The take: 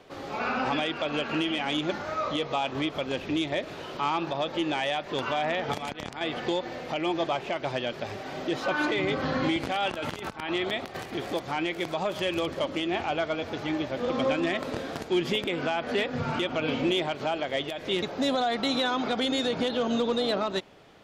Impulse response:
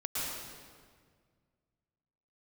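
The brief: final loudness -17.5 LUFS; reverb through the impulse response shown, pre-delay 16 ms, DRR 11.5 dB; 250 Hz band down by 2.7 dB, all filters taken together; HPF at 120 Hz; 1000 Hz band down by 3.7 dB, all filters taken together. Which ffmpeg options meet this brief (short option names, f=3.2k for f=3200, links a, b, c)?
-filter_complex "[0:a]highpass=120,equalizer=f=250:t=o:g=-3,equalizer=f=1k:t=o:g=-5,asplit=2[a][b];[1:a]atrim=start_sample=2205,adelay=16[c];[b][c]afir=irnorm=-1:irlink=0,volume=-17dB[d];[a][d]amix=inputs=2:normalize=0,volume=13dB"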